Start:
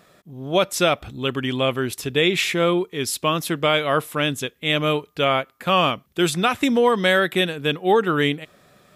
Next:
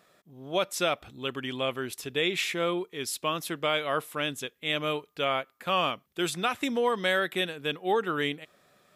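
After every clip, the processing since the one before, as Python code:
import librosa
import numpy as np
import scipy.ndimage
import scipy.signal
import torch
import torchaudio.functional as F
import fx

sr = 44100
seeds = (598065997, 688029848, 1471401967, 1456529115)

y = fx.low_shelf(x, sr, hz=210.0, db=-9.0)
y = y * librosa.db_to_amplitude(-7.5)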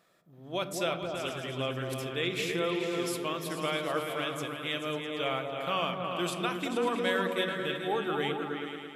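y = fx.echo_opening(x, sr, ms=109, hz=200, octaves=2, feedback_pct=70, wet_db=0)
y = fx.room_shoebox(y, sr, seeds[0], volume_m3=880.0, walls='furnished', distance_m=0.72)
y = y * librosa.db_to_amplitude(-5.5)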